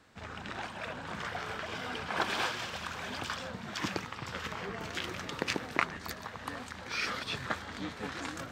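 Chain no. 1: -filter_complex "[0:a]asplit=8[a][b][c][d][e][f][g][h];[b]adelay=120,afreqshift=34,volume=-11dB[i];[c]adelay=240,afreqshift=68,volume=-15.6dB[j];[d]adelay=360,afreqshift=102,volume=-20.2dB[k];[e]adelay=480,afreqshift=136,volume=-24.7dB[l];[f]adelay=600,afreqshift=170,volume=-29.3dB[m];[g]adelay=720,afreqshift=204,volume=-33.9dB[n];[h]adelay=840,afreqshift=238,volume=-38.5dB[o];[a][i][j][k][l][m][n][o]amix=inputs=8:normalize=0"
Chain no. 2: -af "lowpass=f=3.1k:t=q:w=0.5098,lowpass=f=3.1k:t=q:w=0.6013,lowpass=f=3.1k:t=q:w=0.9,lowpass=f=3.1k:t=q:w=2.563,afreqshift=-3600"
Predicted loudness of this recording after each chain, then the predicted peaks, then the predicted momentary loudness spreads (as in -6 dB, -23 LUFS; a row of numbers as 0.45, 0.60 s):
-36.0, -36.0 LUFS; -7.5, -7.5 dBFS; 8, 8 LU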